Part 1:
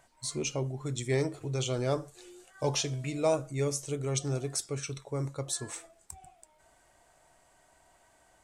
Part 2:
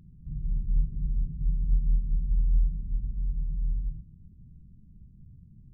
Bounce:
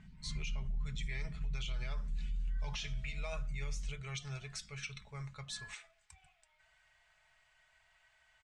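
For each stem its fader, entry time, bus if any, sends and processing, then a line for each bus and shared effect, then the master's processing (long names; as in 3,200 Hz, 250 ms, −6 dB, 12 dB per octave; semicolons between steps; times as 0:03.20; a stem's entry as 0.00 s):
−8.0 dB, 0.00 s, no send, drawn EQ curve 140 Hz 0 dB, 230 Hz −25 dB, 2,300 Hz +12 dB
−4.5 dB, 0.00 s, no send, automatic ducking −6 dB, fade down 1.90 s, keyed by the first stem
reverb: not used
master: low-pass filter 2,800 Hz 12 dB per octave; comb filter 4.7 ms, depth 44%; brickwall limiter −31 dBFS, peak gain reduction 11 dB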